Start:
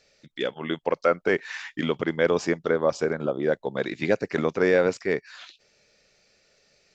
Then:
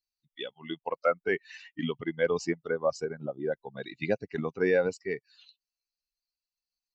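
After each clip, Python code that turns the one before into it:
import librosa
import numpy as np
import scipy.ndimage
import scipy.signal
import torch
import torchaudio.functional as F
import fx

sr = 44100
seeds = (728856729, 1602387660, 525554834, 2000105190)

y = fx.bin_expand(x, sr, power=2.0)
y = F.gain(torch.from_numpy(y), -1.5).numpy()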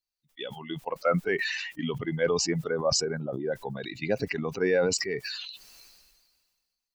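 y = fx.sustainer(x, sr, db_per_s=34.0)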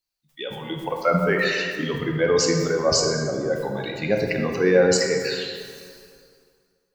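y = fx.rev_plate(x, sr, seeds[0], rt60_s=2.1, hf_ratio=0.55, predelay_ms=0, drr_db=1.0)
y = F.gain(torch.from_numpy(y), 4.0).numpy()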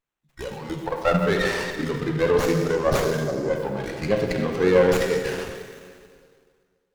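y = fx.running_max(x, sr, window=9)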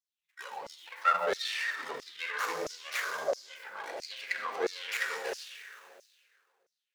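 y = fx.filter_lfo_highpass(x, sr, shape='saw_down', hz=1.5, low_hz=560.0, high_hz=5800.0, q=3.3)
y = F.gain(torch.from_numpy(y), -8.0).numpy()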